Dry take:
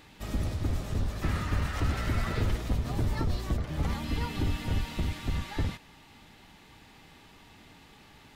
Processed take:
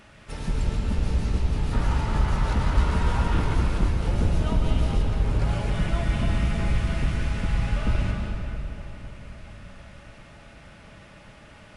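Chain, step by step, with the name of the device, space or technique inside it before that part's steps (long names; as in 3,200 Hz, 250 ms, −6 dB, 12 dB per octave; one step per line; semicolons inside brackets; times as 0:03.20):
slowed and reverbed (speed change −29%; convolution reverb RT60 3.5 s, pre-delay 104 ms, DRR 1 dB)
level +3 dB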